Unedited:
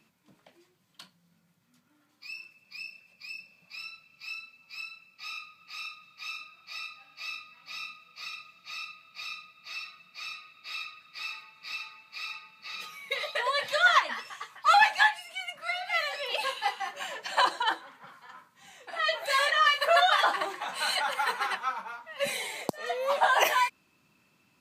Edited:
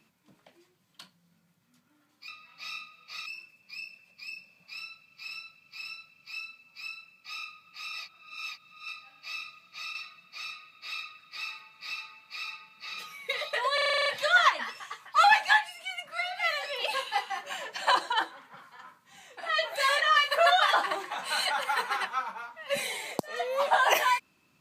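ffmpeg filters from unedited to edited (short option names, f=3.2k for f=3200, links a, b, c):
-filter_complex "[0:a]asplit=17[a][b][c][d][e][f][g][h][i][j][k][l][m][n][o][p][q];[a]atrim=end=2.282[r];[b]atrim=start=7.358:end=8.342[s];[c]atrim=start=2.278:end=4.302[t];[d]atrim=start=3.758:end=4.302[u];[e]atrim=start=3.758:end=5.872[v];[f]atrim=start=5.868:end=6.822,asetpts=PTS-STARTPTS,areverse[w];[g]atrim=start=6.818:end=7.362[x];[h]atrim=start=8.338:end=8.872[y];[i]atrim=start=9.768:end=13.602[z];[j]atrim=start=13.558:end=13.602[aa];[k]atrim=start=13.558:end=13.602[ab];[l]atrim=start=13.558:end=13.602[ac];[m]atrim=start=13.558:end=13.602[ad];[n]atrim=start=13.558:end=13.602[ae];[o]atrim=start=13.558:end=13.602[af];[p]atrim=start=13.558:end=13.602[ag];[q]atrim=start=13.558[ah];[r][s]acrossfade=d=0.004:c1=hsin:c2=hsin[ai];[ai][t]acrossfade=d=0.004:c1=hsin:c2=hsin[aj];[aj][u]acrossfade=d=0.004:c1=hsin:c2=hsin[ak];[ak][v]acrossfade=d=0.004:c1=hsin:c2=hsin[al];[al][w]acrossfade=d=0.004:c1=hsin:c2=hsin[am];[am][x]acrossfade=d=0.004:c1=hsin:c2=hsin[an];[an][y]acrossfade=d=0.004:c1=hsin:c2=hsin[ao];[ao][z]acrossfade=d=0.004:c1=hsin:c2=hsin[ap];[ap][aa]acrossfade=d=0.004:c1=hsin:c2=hsin[aq];[aq][ab]acrossfade=d=0.004:c1=hsin:c2=hsin[ar];[ar][ac]acrossfade=d=0.004:c1=hsin:c2=hsin[as];[as][ad]acrossfade=d=0.004:c1=hsin:c2=hsin[at];[at][ae]acrossfade=d=0.004:c1=hsin:c2=hsin[au];[au][af]acrossfade=d=0.004:c1=hsin:c2=hsin[av];[av][ag]acrossfade=d=0.004:c1=hsin:c2=hsin[aw];[aw][ah]acrossfade=d=0.004:c1=hsin:c2=hsin"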